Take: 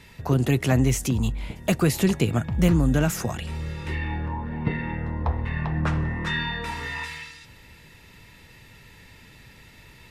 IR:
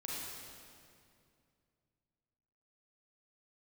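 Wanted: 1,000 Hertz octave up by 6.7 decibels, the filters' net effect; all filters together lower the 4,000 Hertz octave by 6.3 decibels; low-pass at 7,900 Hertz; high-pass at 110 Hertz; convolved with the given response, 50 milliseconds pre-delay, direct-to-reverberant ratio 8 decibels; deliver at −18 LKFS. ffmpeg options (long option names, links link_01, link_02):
-filter_complex "[0:a]highpass=110,lowpass=7900,equalizer=frequency=1000:width_type=o:gain=8.5,equalizer=frequency=4000:width_type=o:gain=-9,asplit=2[link_01][link_02];[1:a]atrim=start_sample=2205,adelay=50[link_03];[link_02][link_03]afir=irnorm=-1:irlink=0,volume=-9dB[link_04];[link_01][link_04]amix=inputs=2:normalize=0,volume=7dB"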